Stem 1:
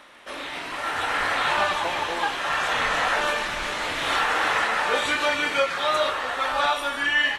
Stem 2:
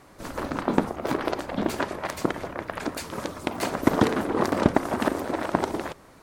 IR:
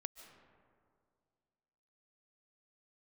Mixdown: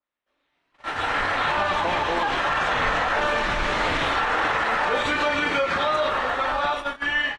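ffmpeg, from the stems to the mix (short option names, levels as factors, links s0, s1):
-filter_complex "[0:a]lowpass=6500,dynaudnorm=f=280:g=11:m=3.98,adynamicequalizer=threshold=0.0355:dfrequency=2100:dqfactor=0.7:tfrequency=2100:tqfactor=0.7:attack=5:release=100:ratio=0.375:range=2.5:mode=cutabove:tftype=highshelf,volume=0.668,asplit=2[s0][s1];[s1]volume=0.473[s2];[1:a]adelay=1100,volume=0.112[s3];[2:a]atrim=start_sample=2205[s4];[s2][s4]afir=irnorm=-1:irlink=0[s5];[s0][s3][s5]amix=inputs=3:normalize=0,agate=range=0.0112:threshold=0.0447:ratio=16:detection=peak,lowshelf=f=170:g=7.5,alimiter=limit=0.2:level=0:latency=1:release=77"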